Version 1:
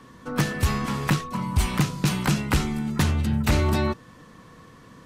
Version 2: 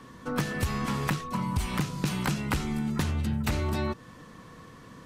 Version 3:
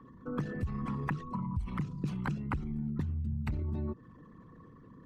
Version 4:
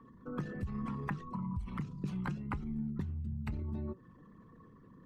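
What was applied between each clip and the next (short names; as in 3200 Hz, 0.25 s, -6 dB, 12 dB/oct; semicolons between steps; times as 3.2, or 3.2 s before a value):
compressor, threshold -25 dBFS, peak gain reduction 9 dB
formant sharpening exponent 2; gain -5.5 dB
flange 1.1 Hz, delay 4.3 ms, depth 1.4 ms, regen +78%; gain +1 dB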